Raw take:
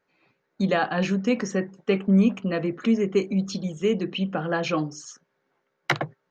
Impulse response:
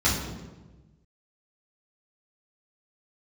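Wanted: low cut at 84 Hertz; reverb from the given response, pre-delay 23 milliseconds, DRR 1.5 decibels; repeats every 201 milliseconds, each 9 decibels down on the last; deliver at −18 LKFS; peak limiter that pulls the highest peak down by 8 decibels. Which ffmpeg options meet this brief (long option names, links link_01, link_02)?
-filter_complex "[0:a]highpass=84,alimiter=limit=-17dB:level=0:latency=1,aecho=1:1:201|402|603|804:0.355|0.124|0.0435|0.0152,asplit=2[link_01][link_02];[1:a]atrim=start_sample=2205,adelay=23[link_03];[link_02][link_03]afir=irnorm=-1:irlink=0,volume=-16dB[link_04];[link_01][link_04]amix=inputs=2:normalize=0,volume=2dB"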